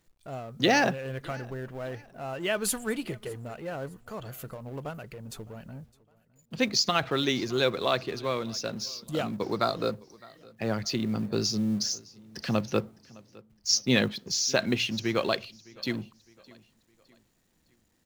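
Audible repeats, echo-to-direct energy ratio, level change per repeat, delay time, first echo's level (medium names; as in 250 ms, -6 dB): 2, -23.0 dB, -8.0 dB, 610 ms, -23.5 dB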